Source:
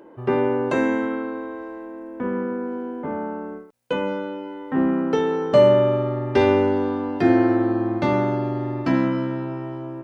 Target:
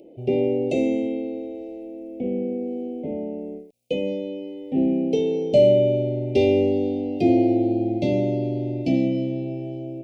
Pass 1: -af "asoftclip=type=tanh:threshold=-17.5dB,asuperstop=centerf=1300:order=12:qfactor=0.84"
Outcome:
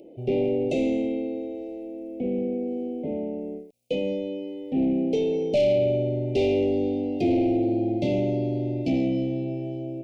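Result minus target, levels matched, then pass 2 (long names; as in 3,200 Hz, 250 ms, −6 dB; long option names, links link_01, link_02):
soft clipping: distortion +14 dB
-af "asoftclip=type=tanh:threshold=-6dB,asuperstop=centerf=1300:order=12:qfactor=0.84"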